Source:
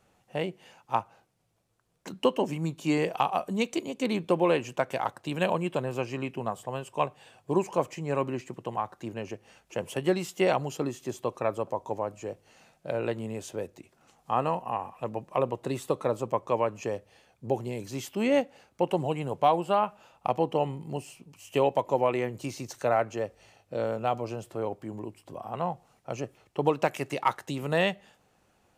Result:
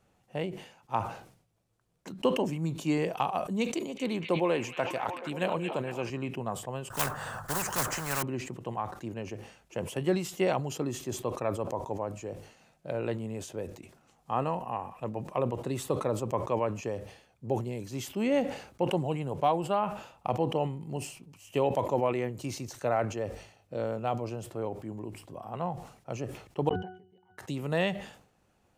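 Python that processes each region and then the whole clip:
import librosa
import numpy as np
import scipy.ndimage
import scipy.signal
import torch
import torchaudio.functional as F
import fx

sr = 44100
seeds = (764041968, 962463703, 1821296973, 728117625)

y = fx.chain(x, sr, fx.highpass(hz=200.0, slope=6),
    fx.echo_stepped(ms=229, hz=2700.0, octaves=-0.7, feedback_pct=70, wet_db=-4), at=(3.74, 6.1))
y = fx.chain(y, sr, fx.block_float(bits=5),
    fx.curve_eq(hz=(150.0, 340.0, 1500.0, 2300.0, 7700.0), db=(0, -16, 12, -18, -8)),
    fx.spectral_comp(ratio=4.0), at=(6.9, 8.23))
y = fx.chain(y, sr, fx.level_steps(step_db=18),
    fx.octave_resonator(note='F#', decay_s=0.39), at=(26.69, 27.38))
y = fx.low_shelf(y, sr, hz=300.0, db=5.0)
y = fx.sustainer(y, sr, db_per_s=96.0)
y = y * 10.0 ** (-4.5 / 20.0)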